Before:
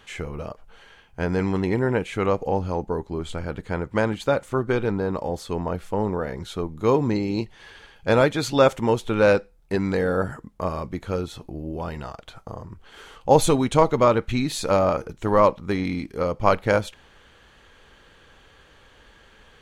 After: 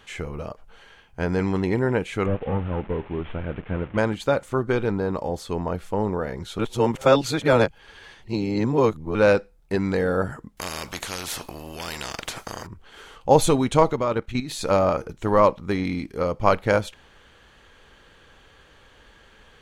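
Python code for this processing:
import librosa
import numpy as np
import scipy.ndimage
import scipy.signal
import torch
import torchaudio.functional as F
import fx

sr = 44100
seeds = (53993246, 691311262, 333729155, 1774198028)

y = fx.delta_mod(x, sr, bps=16000, step_db=-37.5, at=(2.26, 3.98))
y = fx.spectral_comp(y, sr, ratio=4.0, at=(10.57, 12.67))
y = fx.level_steps(y, sr, step_db=11, at=(13.93, 14.61))
y = fx.edit(y, sr, fx.reverse_span(start_s=6.59, length_s=2.56), tone=tone)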